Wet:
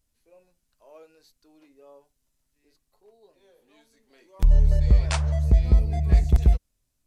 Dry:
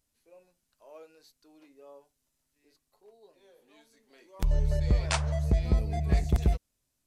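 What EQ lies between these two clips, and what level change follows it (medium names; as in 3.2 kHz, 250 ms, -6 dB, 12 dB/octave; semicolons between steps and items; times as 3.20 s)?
bass shelf 87 Hz +11.5 dB; 0.0 dB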